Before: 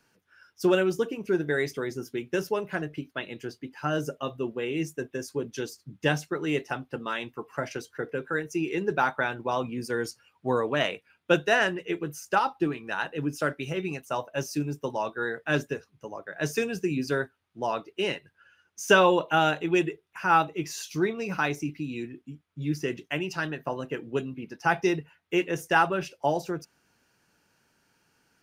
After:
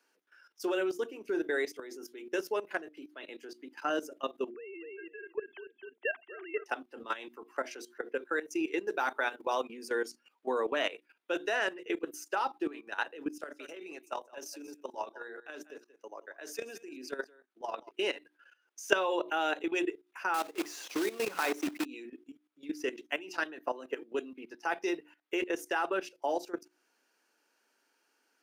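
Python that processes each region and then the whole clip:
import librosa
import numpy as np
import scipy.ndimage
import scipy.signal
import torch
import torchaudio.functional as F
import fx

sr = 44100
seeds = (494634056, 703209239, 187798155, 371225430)

y = fx.chain(x, sr, fx.sine_speech(),
    fx.highpass(hz=550.0, slope=12),
    fx.echo_feedback(ms=246, feedback_pct=16, wet_db=-7.0), at=(4.5, 6.66))
y = fx.chain(y, sr, fx.high_shelf(hz=5400.0, db=9.0),
    fx.hum_notches(base_hz=50, count=9), at=(8.87, 9.63))
y = fx.chain(y, sr, fx.highpass(hz=200.0, slope=12),
    fx.level_steps(step_db=10),
    fx.echo_single(ms=182, db=-16.0), at=(13.28, 17.91))
y = fx.chain(y, sr, fx.block_float(bits=3),
    fx.high_shelf(hz=2800.0, db=-4.5),
    fx.band_squash(depth_pct=100), at=(20.34, 21.86))
y = scipy.signal.sosfilt(scipy.signal.butter(6, 270.0, 'highpass', fs=sr, output='sos'), y)
y = fx.hum_notches(y, sr, base_hz=60, count=6)
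y = fx.level_steps(y, sr, step_db=15)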